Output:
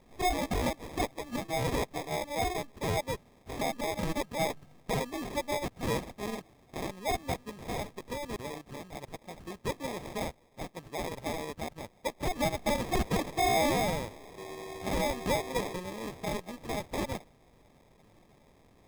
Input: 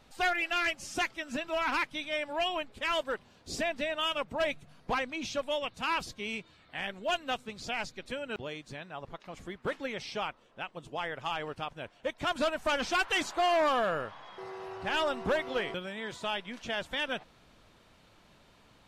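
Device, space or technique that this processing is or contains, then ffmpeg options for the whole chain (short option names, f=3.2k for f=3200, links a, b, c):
crushed at another speed: -af "asetrate=35280,aresample=44100,acrusher=samples=38:mix=1:aa=0.000001,asetrate=55125,aresample=44100"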